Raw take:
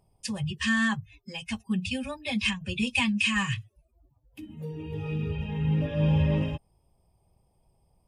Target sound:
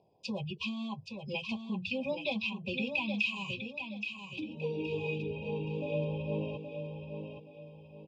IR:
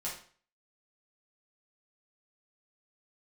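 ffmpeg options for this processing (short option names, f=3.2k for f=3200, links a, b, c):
-filter_complex "[0:a]asettb=1/sr,asplit=3[a][b][c];[a]atrim=end=3.124[d];[b]atrim=start=3.12:end=5.18,asetpts=PTS-STARTPTS,afade=t=in:d=0.004:c=qsin,afade=t=out:st=2.056:d=0.004:c=qsin,highshelf=f=2.4k:g=12[e];[c]atrim=start=5.176[f];[d][e]acrossfade=d=0.004:c1=hsin:c2=qsin[g];[g][f]acrossfade=d=0.004:c1=qsin:c2=hsin,acompressor=threshold=-32dB:ratio=6,asuperstop=centerf=1600:order=20:qfactor=1.2,highpass=250,equalizer=f=250:t=q:w=4:g=-4,equalizer=f=500:t=q:w=4:g=3,equalizer=f=900:t=q:w=4:g=-6,equalizer=f=1.8k:t=q:w=4:g=10,equalizer=f=3k:t=q:w=4:g=-9,lowpass=f=3.8k:w=0.5412,lowpass=f=3.8k:w=1.3066,aecho=1:1:823|1646|2469|3292:0.447|0.152|0.0516|0.0176,volume=5.5dB"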